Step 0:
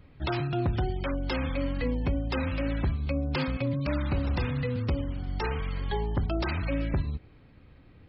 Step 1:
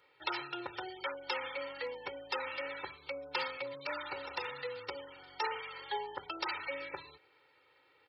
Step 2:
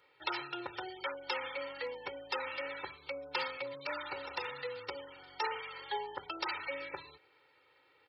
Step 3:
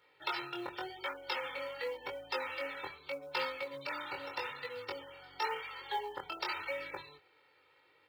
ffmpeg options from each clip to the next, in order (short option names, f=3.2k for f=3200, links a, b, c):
-af "highpass=750,aecho=1:1:2.2:0.99,volume=-3.5dB"
-af anull
-af "flanger=delay=19:depth=4.1:speed=0.87,acrusher=bits=7:mode=log:mix=0:aa=0.000001,volume=3dB"